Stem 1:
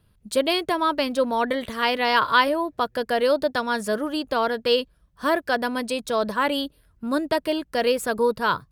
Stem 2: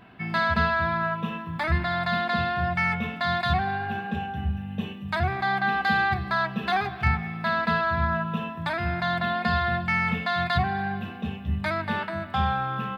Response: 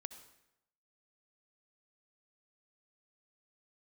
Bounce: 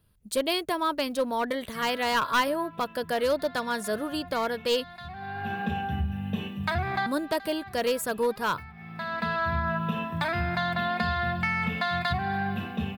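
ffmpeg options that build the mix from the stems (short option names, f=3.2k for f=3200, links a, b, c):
-filter_complex "[0:a]aeval=exprs='clip(val(0),-1,0.158)':c=same,volume=-5dB,asplit=3[a][b][c];[a]atrim=end=5.13,asetpts=PTS-STARTPTS,afade=t=out:st=5.126:d=0.004:c=hsin[d];[b]atrim=start=5.13:end=7.06,asetpts=PTS-STARTPTS,volume=0[e];[c]atrim=start=7.06,asetpts=PTS-STARTPTS,afade=t=in:d=0.004:c=hsin[f];[d][e][f]concat=n=3:v=0:a=1,asplit=2[g][h];[1:a]acompressor=threshold=-26dB:ratio=6,adelay=1550,volume=2dB[i];[h]apad=whole_len=640442[j];[i][j]sidechaincompress=threshold=-50dB:ratio=3:attack=21:release=462[k];[g][k]amix=inputs=2:normalize=0,highshelf=f=9.4k:g=9.5"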